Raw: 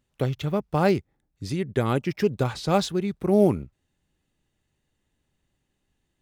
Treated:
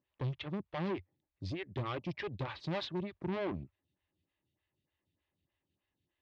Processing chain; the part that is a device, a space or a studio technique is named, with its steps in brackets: vibe pedal into a guitar amplifier (photocell phaser 3.3 Hz; tube stage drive 28 dB, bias 0.5; speaker cabinet 85–4100 Hz, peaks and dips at 90 Hz +5 dB, 150 Hz -4 dB, 230 Hz -9 dB, 450 Hz -9 dB, 750 Hz -7 dB, 1400 Hz -8 dB)

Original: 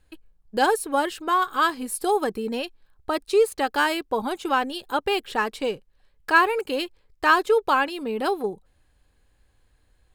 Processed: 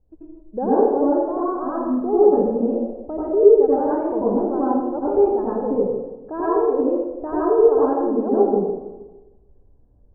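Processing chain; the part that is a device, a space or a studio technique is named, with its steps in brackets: next room (LPF 680 Hz 24 dB/oct; reverb RT60 1.1 s, pre-delay 83 ms, DRR -9 dB); gain -1 dB

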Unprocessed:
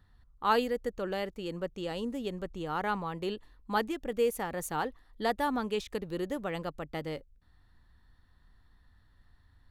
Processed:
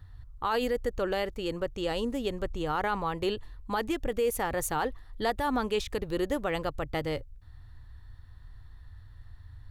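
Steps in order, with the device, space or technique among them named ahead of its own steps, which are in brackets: car stereo with a boomy subwoofer (resonant low shelf 140 Hz +7 dB, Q 3; limiter -25 dBFS, peak gain reduction 11.5 dB); gain +6 dB

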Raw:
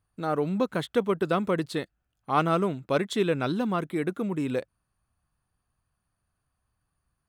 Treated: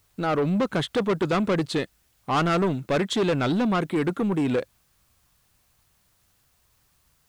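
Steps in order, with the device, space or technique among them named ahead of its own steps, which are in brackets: compact cassette (soft clip -26.5 dBFS, distortion -9 dB; LPF 8900 Hz 12 dB/oct; wow and flutter; white noise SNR 41 dB); gain +8 dB

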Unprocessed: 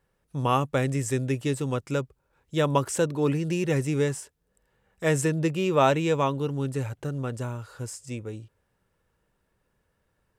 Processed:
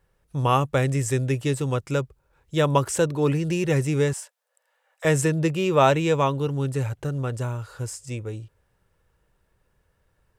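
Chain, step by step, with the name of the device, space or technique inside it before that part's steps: 4.13–5.05 steep high-pass 520 Hz 72 dB/oct; low shelf boost with a cut just above (low shelf 93 Hz +7 dB; bell 230 Hz -5.5 dB 0.68 oct); gain +3 dB

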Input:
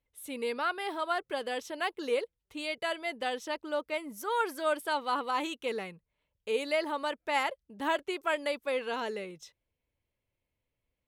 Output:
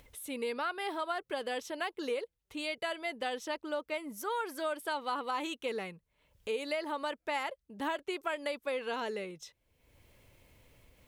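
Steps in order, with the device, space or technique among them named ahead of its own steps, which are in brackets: upward and downward compression (upward compressor, threshold -42 dBFS; compressor 5:1, threshold -31 dBFS, peak gain reduction 7.5 dB)

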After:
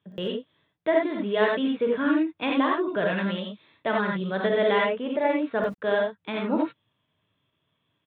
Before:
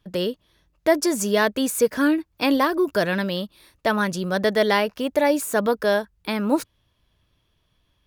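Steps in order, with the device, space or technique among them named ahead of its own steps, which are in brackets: call with lost packets (HPF 100 Hz 24 dB/oct; downsampling 8000 Hz; packet loss packets of 20 ms bursts); 4.78–5.36 high shelf 4100 Hz -10.5 dB; non-linear reverb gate 0.11 s rising, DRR -1 dB; gain -6.5 dB

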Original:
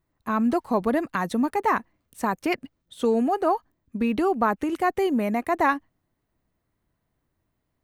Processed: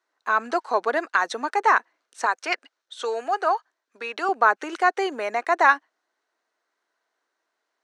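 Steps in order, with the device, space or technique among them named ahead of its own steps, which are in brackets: phone speaker on a table (speaker cabinet 440–8000 Hz, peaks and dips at 550 Hz -4 dB, 1500 Hz +8 dB, 4100 Hz +4 dB, 5900 Hz +5 dB); 2.26–4.29 HPF 620 Hz 6 dB/oct; gain +3.5 dB

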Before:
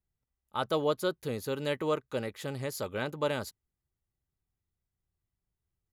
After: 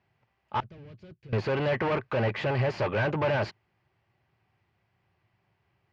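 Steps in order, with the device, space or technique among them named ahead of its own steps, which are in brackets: overdrive pedal into a guitar cabinet (overdrive pedal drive 35 dB, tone 1300 Hz, clips at -16 dBFS; speaker cabinet 77–4300 Hz, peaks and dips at 110 Hz +8 dB, 270 Hz -7 dB, 470 Hz -6 dB, 1300 Hz -5 dB, 2500 Hz +3 dB, 3700 Hz -8 dB); 0.6–1.33 passive tone stack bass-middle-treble 10-0-1

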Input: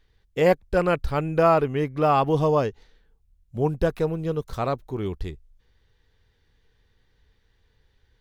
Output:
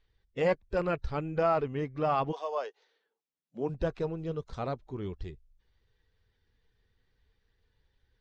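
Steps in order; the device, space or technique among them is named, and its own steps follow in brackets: clip after many re-uploads (LPF 6500 Hz 24 dB/oct; bin magnitudes rounded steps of 15 dB); 2.31–3.68 HPF 670 Hz -> 180 Hz 24 dB/oct; gain -8 dB

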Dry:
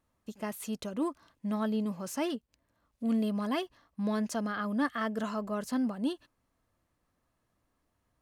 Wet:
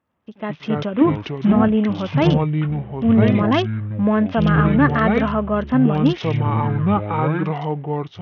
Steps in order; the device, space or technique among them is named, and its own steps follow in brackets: 1.01–1.61 bell 250 Hz +12 dB 0.41 oct; echoes that change speed 97 ms, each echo -6 st, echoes 3; Bluetooth headset (HPF 100 Hz 12 dB/oct; AGC gain up to 11 dB; downsampling 8000 Hz; gain +3 dB; SBC 64 kbps 48000 Hz)

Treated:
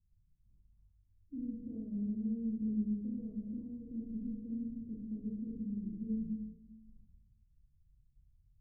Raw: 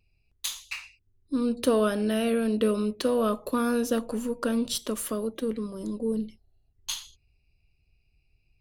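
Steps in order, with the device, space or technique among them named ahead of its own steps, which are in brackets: 0.71–2.1 bell 780 Hz +5 dB 1.5 oct; club heard from the street (limiter -20.5 dBFS, peak gain reduction 10 dB; LPF 210 Hz 24 dB/oct; reverb RT60 1.1 s, pre-delay 34 ms, DRR -4.5 dB); gain -7 dB

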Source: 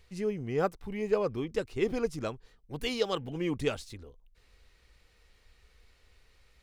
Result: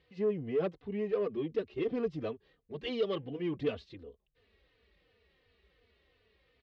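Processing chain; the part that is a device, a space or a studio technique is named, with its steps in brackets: barber-pole flanger into a guitar amplifier (endless flanger 3.3 ms -2.8 Hz; soft clip -29 dBFS, distortion -11 dB; speaker cabinet 91–3500 Hz, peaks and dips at 120 Hz -7 dB, 430 Hz +4 dB, 890 Hz -8 dB, 1400 Hz -8 dB, 2300 Hz -5 dB); gain +2.5 dB

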